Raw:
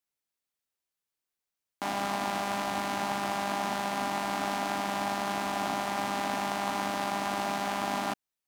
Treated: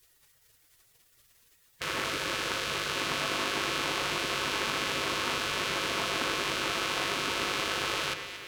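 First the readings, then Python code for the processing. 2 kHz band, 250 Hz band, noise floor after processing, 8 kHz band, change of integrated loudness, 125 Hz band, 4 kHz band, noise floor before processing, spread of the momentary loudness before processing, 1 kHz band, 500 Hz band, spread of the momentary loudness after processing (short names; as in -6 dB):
+5.0 dB, -4.0 dB, -65 dBFS, +4.0 dB, +1.5 dB, -0.5 dB, +8.0 dB, under -85 dBFS, 0 LU, -4.5 dB, -0.5 dB, 2 LU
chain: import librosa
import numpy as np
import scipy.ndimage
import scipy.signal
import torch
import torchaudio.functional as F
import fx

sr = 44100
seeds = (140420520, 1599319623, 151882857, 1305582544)

p1 = fx.bin_compress(x, sr, power=0.6)
p2 = fx.peak_eq(p1, sr, hz=110.0, db=-7.5, octaves=0.67)
p3 = fx.notch(p2, sr, hz=1900.0, q=26.0)
p4 = fx.over_compress(p3, sr, threshold_db=-38.0, ratio=-0.5)
p5 = p3 + F.gain(torch.from_numpy(p4), 0.0).numpy()
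p6 = p5 + 10.0 ** (-16.5 / 20.0) * np.pad(p5, (int(1145 * sr / 1000.0), 0))[:len(p5)]
p7 = fx.spec_gate(p6, sr, threshold_db=-15, keep='weak')
p8 = fx.quant_float(p7, sr, bits=4)
p9 = fx.high_shelf(p8, sr, hz=4000.0, db=-9.5)
p10 = p9 + fx.echo_alternate(p9, sr, ms=115, hz=1900.0, feedback_pct=71, wet_db=-10, dry=0)
y = F.gain(torch.from_numpy(p10), 6.0).numpy()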